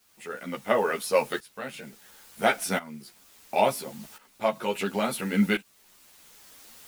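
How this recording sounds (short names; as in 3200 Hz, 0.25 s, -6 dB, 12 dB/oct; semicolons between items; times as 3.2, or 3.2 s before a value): a quantiser's noise floor 8-bit, dither triangular; tremolo saw up 0.72 Hz, depth 85%; a shimmering, thickened sound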